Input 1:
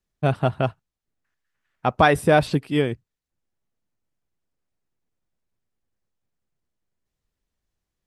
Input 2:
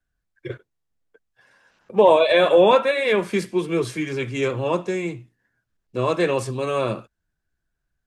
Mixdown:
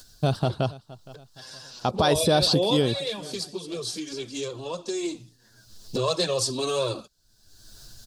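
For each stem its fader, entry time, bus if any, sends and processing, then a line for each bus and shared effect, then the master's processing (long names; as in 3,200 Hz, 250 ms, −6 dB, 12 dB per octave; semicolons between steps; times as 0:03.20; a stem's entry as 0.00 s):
+1.0 dB, 0.00 s, no send, echo send −23.5 dB, high-shelf EQ 4,400 Hz −9.5 dB
0:04.74 −8.5 dB → 0:05.16 −1.5 dB, 0.00 s, no send, no echo send, high-shelf EQ 4,000 Hz −4.5 dB; upward compression, threshold −17 dBFS; flanger swept by the level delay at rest 10.2 ms, full sweep at −10.5 dBFS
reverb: not used
echo: repeating echo 466 ms, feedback 44%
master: high shelf with overshoot 3,100 Hz +13.5 dB, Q 3; brickwall limiter −11.5 dBFS, peak gain reduction 9.5 dB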